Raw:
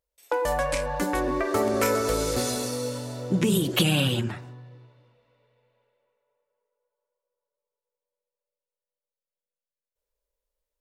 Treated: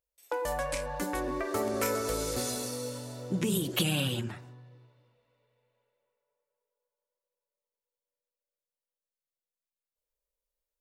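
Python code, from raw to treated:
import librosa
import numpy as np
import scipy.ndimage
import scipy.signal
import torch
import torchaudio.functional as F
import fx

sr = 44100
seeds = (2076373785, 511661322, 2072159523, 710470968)

y = fx.high_shelf(x, sr, hz=6600.0, db=5.5)
y = F.gain(torch.from_numpy(y), -7.0).numpy()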